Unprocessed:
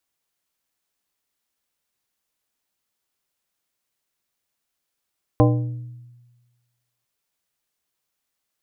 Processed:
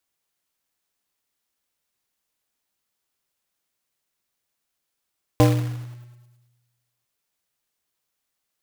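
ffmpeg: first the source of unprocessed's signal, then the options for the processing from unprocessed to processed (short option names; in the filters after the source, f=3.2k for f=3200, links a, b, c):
-f lavfi -i "aevalsrc='0.237*pow(10,-3*t/1.32)*sin(2*PI*121*t)+0.188*pow(10,-3*t/0.695)*sin(2*PI*302.5*t)+0.15*pow(10,-3*t/0.5)*sin(2*PI*484*t)+0.119*pow(10,-3*t/0.428)*sin(2*PI*605*t)+0.0944*pow(10,-3*t/0.356)*sin(2*PI*786.5*t)+0.075*pow(10,-3*t/0.295)*sin(2*PI*1028.5*t)':d=1.65:s=44100"
-af "acrusher=bits=3:mode=log:mix=0:aa=0.000001"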